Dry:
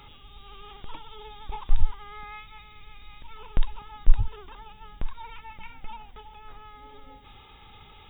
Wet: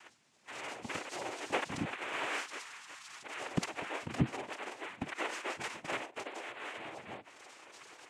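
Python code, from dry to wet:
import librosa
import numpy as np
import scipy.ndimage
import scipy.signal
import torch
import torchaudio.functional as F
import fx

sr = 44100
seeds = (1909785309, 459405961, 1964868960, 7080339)

y = fx.noise_reduce_blind(x, sr, reduce_db=22)
y = fx.noise_vocoder(y, sr, seeds[0], bands=4)
y = F.gain(torch.from_numpy(y), 5.5).numpy()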